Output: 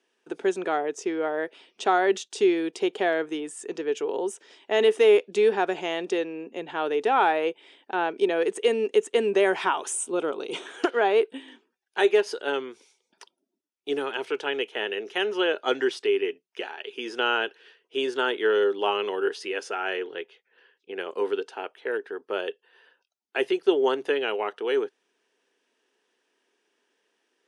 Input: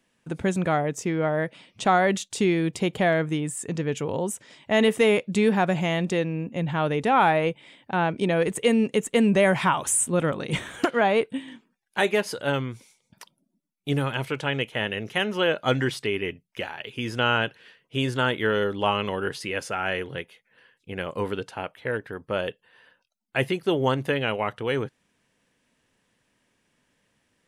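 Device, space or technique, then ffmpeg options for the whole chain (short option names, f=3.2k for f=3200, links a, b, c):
phone speaker on a table: -filter_complex "[0:a]highpass=f=340:w=0.5412,highpass=f=340:w=1.3066,equalizer=f=400:t=q:w=4:g=8,equalizer=f=570:t=q:w=4:g=-7,equalizer=f=1.1k:t=q:w=4:g=-4,equalizer=f=2.1k:t=q:w=4:g=-6,equalizer=f=4.2k:t=q:w=4:g=-3,equalizer=f=7.5k:t=q:w=4:g=-7,lowpass=f=8.4k:w=0.5412,lowpass=f=8.4k:w=1.3066,asettb=1/sr,asplit=3[a][b][c];[a]atrim=end=9.934[d];[b]atrim=start=9.93:end=10.66,asetpts=PTS-STARTPTS,afade=t=in:d=0.004:c=qsin,afade=t=out:st=0.726:d=0.004:c=qsin,equalizer=f=1.8k:w=5.4:g=-14.5[e];[c]atrim=start=10.656[f];[d][e]acrossfade=d=0.004:c1=hsin:c2=qsin[g];[g][f]acrossfade=d=0.004:c1=qsin:c2=hsin,asettb=1/sr,asplit=3[h][i][j];[h]atrim=end=19.964[k];[i]atrim=start=19.96:end=20.99,asetpts=PTS-STARTPTS,afade=t=in:d=0.004:c=qsin,afade=t=out:st=1.026:d=0.004:c=qsin,lowpass=5.3k[l];[j]atrim=start=20.986[m];[k][l]acrossfade=d=0.004:c1=hsin:c2=qsin[n];[n][m]acrossfade=d=0.004:c1=qsin:c2=hsin"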